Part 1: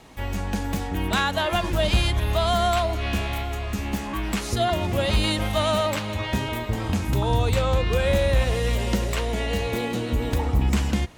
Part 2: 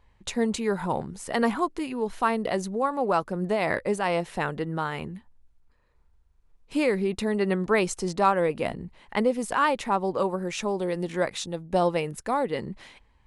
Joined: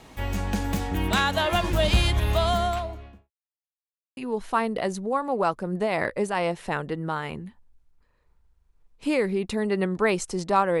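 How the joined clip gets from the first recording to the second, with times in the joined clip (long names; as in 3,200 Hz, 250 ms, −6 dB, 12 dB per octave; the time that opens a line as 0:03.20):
part 1
0:02.28–0:03.31: fade out and dull
0:03.31–0:04.17: silence
0:04.17: continue with part 2 from 0:01.86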